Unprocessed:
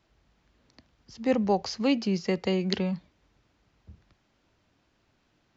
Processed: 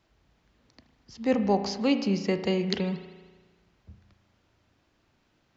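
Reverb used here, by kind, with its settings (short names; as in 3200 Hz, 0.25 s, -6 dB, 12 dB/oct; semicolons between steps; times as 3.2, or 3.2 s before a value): spring tank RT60 1.4 s, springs 35 ms, chirp 45 ms, DRR 8.5 dB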